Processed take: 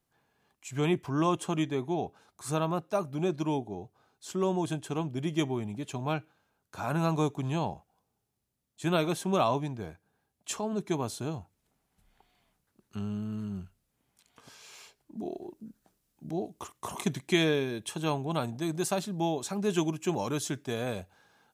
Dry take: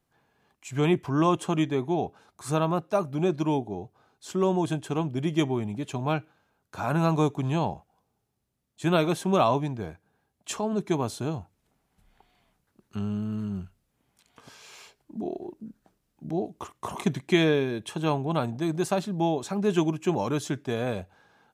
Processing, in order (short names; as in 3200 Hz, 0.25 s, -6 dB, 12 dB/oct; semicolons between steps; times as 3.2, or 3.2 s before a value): high shelf 4100 Hz +5 dB, from 15.19 s +10 dB; gain -4.5 dB